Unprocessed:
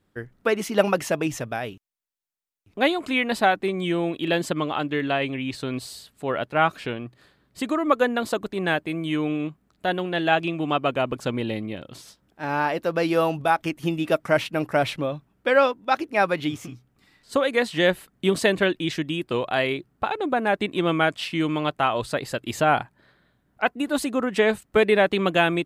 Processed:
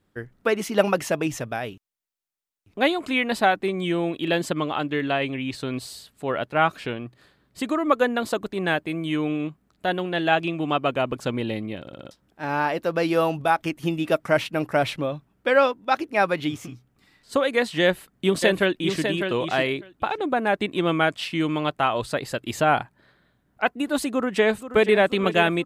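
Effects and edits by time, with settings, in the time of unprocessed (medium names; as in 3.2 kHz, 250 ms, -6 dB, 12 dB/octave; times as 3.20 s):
11.81 s: stutter in place 0.06 s, 5 plays
17.82–19.02 s: echo throw 600 ms, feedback 10%, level -6.5 dB
24.10–25.00 s: echo throw 480 ms, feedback 55%, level -12.5 dB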